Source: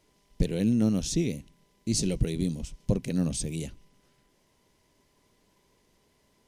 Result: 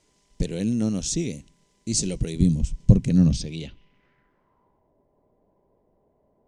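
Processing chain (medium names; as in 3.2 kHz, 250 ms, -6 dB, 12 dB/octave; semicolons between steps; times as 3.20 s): 2.40–3.41 s: tone controls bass +14 dB, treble -3 dB; low-pass sweep 7.7 kHz -> 680 Hz, 3.08–4.93 s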